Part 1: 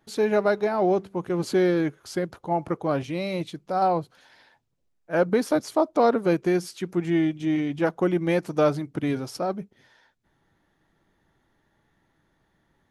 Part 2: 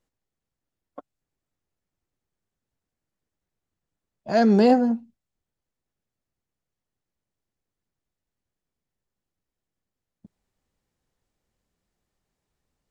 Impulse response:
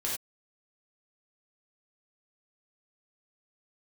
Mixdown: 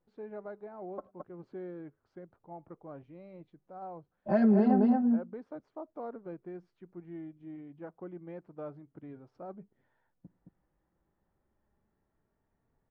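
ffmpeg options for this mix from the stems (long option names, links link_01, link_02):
-filter_complex "[0:a]volume=-13.5dB,afade=type=in:start_time=9.25:duration=0.45:silence=0.421697[link_01];[1:a]asplit=2[link_02][link_03];[link_03]adelay=3.6,afreqshift=0.29[link_04];[link_02][link_04]amix=inputs=2:normalize=1,volume=1.5dB,asplit=3[link_05][link_06][link_07];[link_06]volume=-21.5dB[link_08];[link_07]volume=-3dB[link_09];[2:a]atrim=start_sample=2205[link_10];[link_08][link_10]afir=irnorm=-1:irlink=0[link_11];[link_09]aecho=0:1:219:1[link_12];[link_01][link_05][link_11][link_12]amix=inputs=4:normalize=0,lowpass=1300,acompressor=threshold=-21dB:ratio=5"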